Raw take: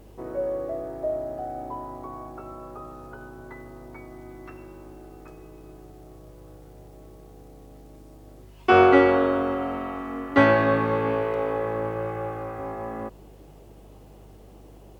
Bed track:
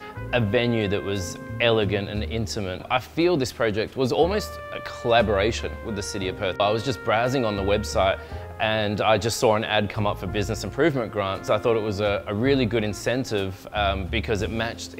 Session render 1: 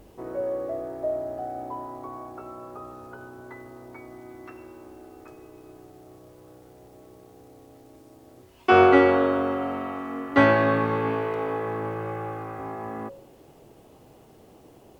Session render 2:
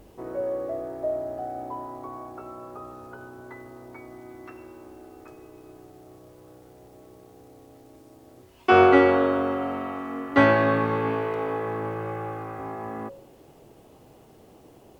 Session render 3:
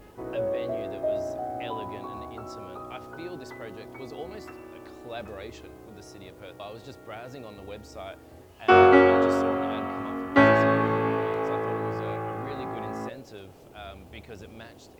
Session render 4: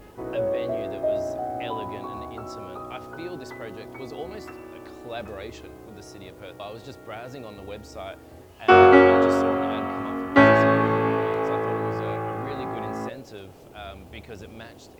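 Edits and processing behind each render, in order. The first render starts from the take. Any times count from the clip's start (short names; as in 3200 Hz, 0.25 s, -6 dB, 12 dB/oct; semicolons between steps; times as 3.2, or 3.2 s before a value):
de-hum 50 Hz, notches 11
nothing audible
add bed track -19 dB
gain +3 dB; limiter -2 dBFS, peak gain reduction 1 dB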